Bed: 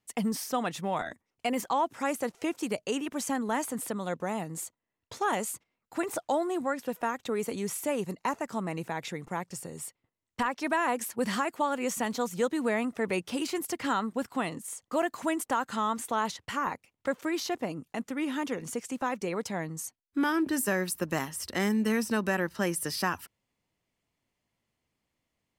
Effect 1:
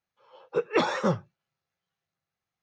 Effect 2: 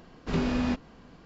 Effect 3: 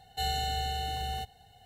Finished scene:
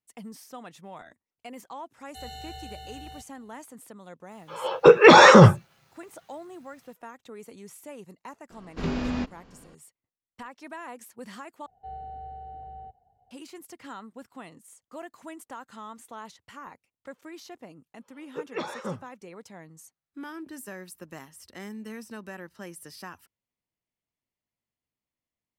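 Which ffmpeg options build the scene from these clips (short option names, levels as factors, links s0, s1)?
-filter_complex "[3:a]asplit=2[s0][s1];[1:a]asplit=2[s2][s3];[0:a]volume=0.237[s4];[s0]dynaudnorm=f=170:g=3:m=1.68[s5];[s2]alimiter=level_in=16.8:limit=0.891:release=50:level=0:latency=1[s6];[s1]lowpass=f=720:t=q:w=2.4[s7];[s3]dynaudnorm=f=150:g=3:m=2.82[s8];[s4]asplit=2[s9][s10];[s9]atrim=end=11.664[s11];[s7]atrim=end=1.65,asetpts=PTS-STARTPTS,volume=0.237[s12];[s10]atrim=start=13.306[s13];[s5]atrim=end=1.65,asetpts=PTS-STARTPTS,volume=0.2,afade=t=in:d=0.004:c=hsin,afade=t=out:st=1.646:d=0.004:c=hsin,adelay=1970[s14];[s6]atrim=end=2.62,asetpts=PTS-STARTPTS,volume=0.841,afade=t=in:d=0.004:c=hsin,afade=t=out:st=2.616:d=0.004:c=hsin,adelay=4310[s15];[2:a]atrim=end=1.25,asetpts=PTS-STARTPTS,volume=0.841,afade=t=in:d=0.004:c=hsin,afade=t=out:st=1.246:d=0.004:c=hsin,adelay=374850S[s16];[s8]atrim=end=2.62,asetpts=PTS-STARTPTS,volume=0.133,afade=t=in:d=0.004:c=hsin,afade=t=out:st=2.616:d=0.004:c=hsin,adelay=17810[s17];[s11][s12]acrossfade=d=0.004:c1=hsin:c2=hsin[s18];[s18][s13]acrossfade=d=0.004:c1=hsin:c2=hsin[s19];[s19][s14][s15][s16][s17]amix=inputs=5:normalize=0"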